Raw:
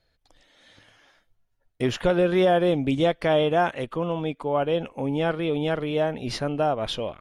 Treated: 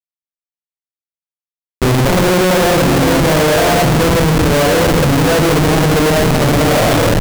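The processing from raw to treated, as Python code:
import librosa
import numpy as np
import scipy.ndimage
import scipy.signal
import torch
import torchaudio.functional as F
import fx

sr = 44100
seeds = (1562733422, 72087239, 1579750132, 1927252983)

y = fx.room_shoebox(x, sr, seeds[0], volume_m3=960.0, walls='mixed', distance_m=4.8)
y = fx.schmitt(y, sr, flips_db=-18.5)
y = y * 10.0 ** (3.0 / 20.0)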